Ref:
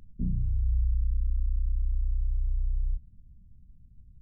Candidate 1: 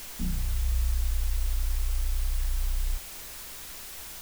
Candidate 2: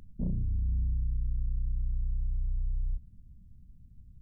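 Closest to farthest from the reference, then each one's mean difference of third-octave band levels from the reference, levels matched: 2, 1; 2.5, 29.5 dB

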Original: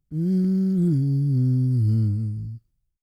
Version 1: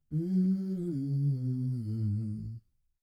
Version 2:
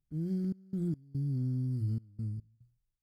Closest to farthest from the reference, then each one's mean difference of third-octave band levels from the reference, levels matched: 1, 2; 2.0, 3.5 dB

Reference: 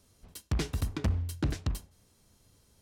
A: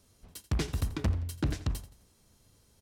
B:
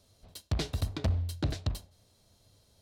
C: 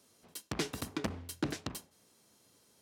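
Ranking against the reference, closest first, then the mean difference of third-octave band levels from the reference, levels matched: A, B, C; 1.0, 2.0, 5.0 dB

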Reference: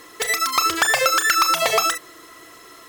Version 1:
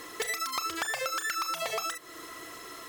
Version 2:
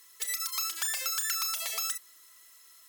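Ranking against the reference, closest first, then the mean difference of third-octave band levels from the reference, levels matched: 1, 2; 5.5, 9.0 dB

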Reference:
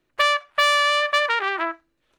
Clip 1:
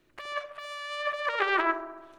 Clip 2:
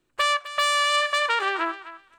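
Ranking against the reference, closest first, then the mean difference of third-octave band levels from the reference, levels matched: 2, 1; 3.0, 7.0 dB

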